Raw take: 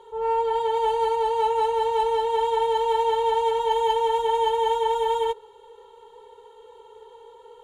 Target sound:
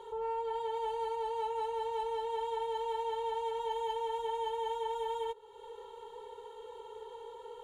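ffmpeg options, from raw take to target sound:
ffmpeg -i in.wav -af "acompressor=threshold=-40dB:ratio=2.5" out.wav

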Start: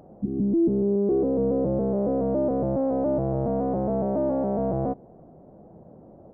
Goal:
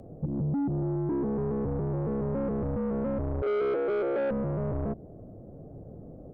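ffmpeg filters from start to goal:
ffmpeg -i in.wav -filter_complex "[0:a]aemphasis=mode=production:type=cd,bandreject=frequency=1000:width=7.4,afreqshift=-53,tiltshelf=frequency=690:gain=5.5,acompressor=threshold=-23dB:ratio=5,asettb=1/sr,asplit=3[link_01][link_02][link_03];[link_01]atrim=end=3.424[link_04];[link_02]atrim=start=3.42:end=4.31,asetpts=PTS-STARTPTS,afade=type=in:duration=0.004:curve=qsin,afade=type=out:start_time=0.886:duration=0.004:curve=qsin,highpass=frequency=410:width_type=q:width=4.2[link_05];[link_03]atrim=start=4.306[link_06];[link_04][link_05]acrossfade=duration=0.004:curve1=hsin:curve2=qsin[link_07];[link_07][link_06]acrossfade=duration=0.004:curve1=qsin:curve2=hsin,asoftclip=type=tanh:threshold=-25dB" out.wav

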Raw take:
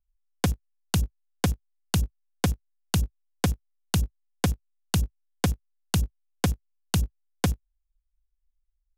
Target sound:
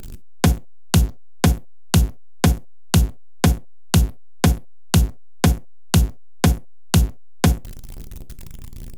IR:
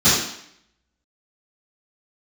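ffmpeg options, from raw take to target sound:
-filter_complex "[0:a]aeval=exprs='val(0)+0.5*0.0211*sgn(val(0))':channel_layout=same,asplit=2[link_01][link_02];[link_02]tiltshelf=frequency=650:gain=3[link_03];[1:a]atrim=start_sample=2205,atrim=end_sample=6174,asetrate=83790,aresample=44100[link_04];[link_03][link_04]afir=irnorm=-1:irlink=0,volume=-28.5dB[link_05];[link_01][link_05]amix=inputs=2:normalize=0,volume=7dB"

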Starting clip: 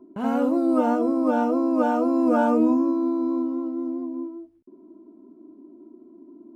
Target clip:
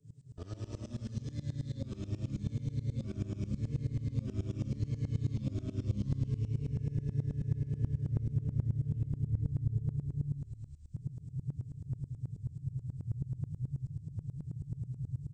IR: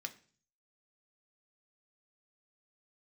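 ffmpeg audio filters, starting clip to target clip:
-filter_complex "[0:a]aemphasis=mode=production:type=75fm,asetrate=18846,aresample=44100,flanger=delay=0.1:depth=9.1:regen=-68:speed=0.87:shape=triangular,acompressor=threshold=-45dB:ratio=1.5,asplit=2[link_01][link_02];[1:a]atrim=start_sample=2205[link_03];[link_02][link_03]afir=irnorm=-1:irlink=0,volume=-5dB[link_04];[link_01][link_04]amix=inputs=2:normalize=0,acrossover=split=230|670[link_05][link_06][link_07];[link_05]acompressor=threshold=-45dB:ratio=4[link_08];[link_06]acompressor=threshold=-46dB:ratio=4[link_09];[link_07]acompressor=threshold=-52dB:ratio=4[link_10];[link_08][link_09][link_10]amix=inputs=3:normalize=0,asplit=2[link_11][link_12];[link_12]alimiter=level_in=13.5dB:limit=-24dB:level=0:latency=1:release=199,volume=-13.5dB,volume=2dB[link_13];[link_11][link_13]amix=inputs=2:normalize=0,asubboost=boost=6.5:cutoff=200,asplit=5[link_14][link_15][link_16][link_17][link_18];[link_15]adelay=259,afreqshift=-34,volume=-9.5dB[link_19];[link_16]adelay=518,afreqshift=-68,volume=-17.9dB[link_20];[link_17]adelay=777,afreqshift=-102,volume=-26.3dB[link_21];[link_18]adelay=1036,afreqshift=-136,volume=-34.7dB[link_22];[link_14][link_19][link_20][link_21][link_22]amix=inputs=5:normalize=0,aeval=exprs='val(0)*pow(10,-21*if(lt(mod(-9.3*n/s,1),2*abs(-9.3)/1000),1-mod(-9.3*n/s,1)/(2*abs(-9.3)/1000),(mod(-9.3*n/s,1)-2*abs(-9.3)/1000)/(1-2*abs(-9.3)/1000))/20)':channel_layout=same,volume=-2dB"

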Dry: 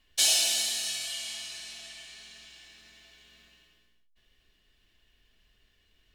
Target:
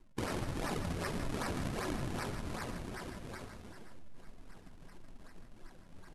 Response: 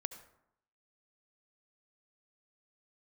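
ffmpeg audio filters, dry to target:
-filter_complex "[0:a]equalizer=frequency=1600:width_type=o:width=1.3:gain=-9,bandreject=frequency=60:width_type=h:width=6,bandreject=frequency=120:width_type=h:width=6,bandreject=frequency=180:width_type=h:width=6,bandreject=frequency=240:width_type=h:width=6,bandreject=frequency=300:width_type=h:width=6,bandreject=frequency=360:width_type=h:width=6,bandreject=frequency=420:width_type=h:width=6,bandreject=frequency=480:width_type=h:width=6,bandreject=frequency=540:width_type=h:width=6,bandreject=frequency=600:width_type=h:width=6,aecho=1:1:6.3:0.96,acrossover=split=160|2200[link_01][link_02][link_03];[link_02]acontrast=60[link_04];[link_01][link_04][link_03]amix=inputs=3:normalize=0,alimiter=limit=-20.5dB:level=0:latency=1:release=390,areverse,acompressor=threshold=-44dB:ratio=12,areverse,acrusher=samples=35:mix=1:aa=0.000001:lfo=1:lforange=56:lforate=2.6,flanger=delay=1.6:depth=5.1:regen=50:speed=1.6:shape=sinusoidal,asetrate=24750,aresample=44100,atempo=1.7818,aecho=1:1:158|417|894:0.335|0.106|0.15,volume=14.5dB"

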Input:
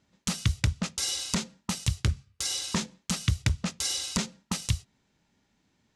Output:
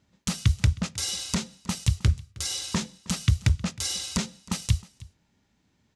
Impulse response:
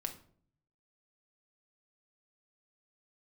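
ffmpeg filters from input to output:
-filter_complex "[0:a]equalizer=frequency=77:width_type=o:width=2.1:gain=5.5,asplit=2[link_01][link_02];[link_02]aecho=0:1:314:0.0841[link_03];[link_01][link_03]amix=inputs=2:normalize=0"

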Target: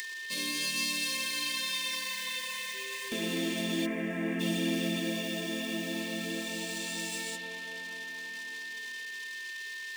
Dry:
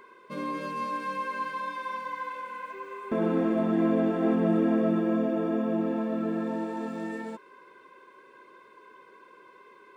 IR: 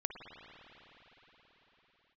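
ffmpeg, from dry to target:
-filter_complex "[0:a]equalizer=frequency=120:width_type=o:width=2:gain=-6,aeval=exprs='sgn(val(0))*max(abs(val(0))-0.00126,0)':channel_layout=same[link_01];[1:a]atrim=start_sample=2205[link_02];[link_01][link_02]afir=irnorm=-1:irlink=0,acrossover=split=410|1400[link_03][link_04][link_05];[link_05]acompressor=mode=upward:threshold=-57dB:ratio=2.5[link_06];[link_03][link_04][link_06]amix=inputs=3:normalize=0,asplit=3[link_07][link_08][link_09];[link_07]afade=type=out:start_time=3.85:duration=0.02[link_10];[link_08]highshelf=frequency=2700:width_type=q:width=3:gain=-14,afade=type=in:start_time=3.85:duration=0.02,afade=type=out:start_time=4.39:duration=0.02[link_11];[link_09]afade=type=in:start_time=4.39:duration=0.02[link_12];[link_10][link_11][link_12]amix=inputs=3:normalize=0,aeval=exprs='val(0)+0.00891*sin(2*PI*1800*n/s)':channel_layout=same,aexciter=amount=14.6:drive=5.7:freq=2200,acrossover=split=400|3000[link_13][link_14][link_15];[link_14]acompressor=threshold=-39dB:ratio=6[link_16];[link_13][link_16][link_15]amix=inputs=3:normalize=0,volume=-2.5dB"

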